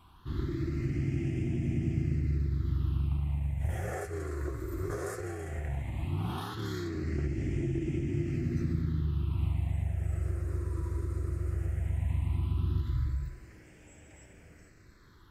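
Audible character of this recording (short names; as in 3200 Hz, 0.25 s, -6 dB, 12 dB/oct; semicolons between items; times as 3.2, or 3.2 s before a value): phasing stages 6, 0.16 Hz, lowest notch 210–1100 Hz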